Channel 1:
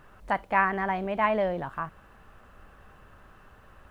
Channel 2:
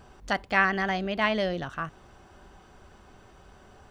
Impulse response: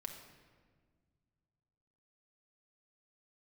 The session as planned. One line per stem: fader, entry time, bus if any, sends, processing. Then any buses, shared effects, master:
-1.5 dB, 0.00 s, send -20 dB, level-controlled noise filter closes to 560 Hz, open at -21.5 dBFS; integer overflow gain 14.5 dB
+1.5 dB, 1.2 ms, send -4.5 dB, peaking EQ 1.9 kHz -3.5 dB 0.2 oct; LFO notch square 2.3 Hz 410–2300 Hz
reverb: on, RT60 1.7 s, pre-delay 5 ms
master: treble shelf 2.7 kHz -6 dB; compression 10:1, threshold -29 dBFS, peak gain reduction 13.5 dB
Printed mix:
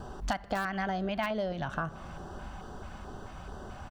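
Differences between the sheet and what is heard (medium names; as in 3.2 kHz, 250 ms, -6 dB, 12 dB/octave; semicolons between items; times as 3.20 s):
stem 2 +1.5 dB -> +9.0 dB; reverb return -8.0 dB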